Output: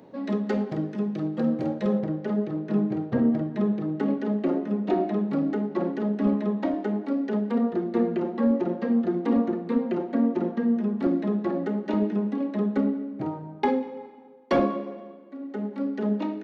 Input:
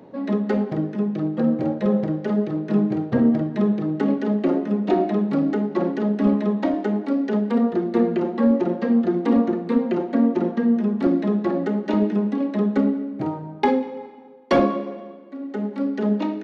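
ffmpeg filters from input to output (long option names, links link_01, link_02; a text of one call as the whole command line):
ffmpeg -i in.wav -af "asetnsamples=nb_out_samples=441:pad=0,asendcmd='1.99 highshelf g -4',highshelf=frequency=3600:gain=7.5,volume=-4.5dB" out.wav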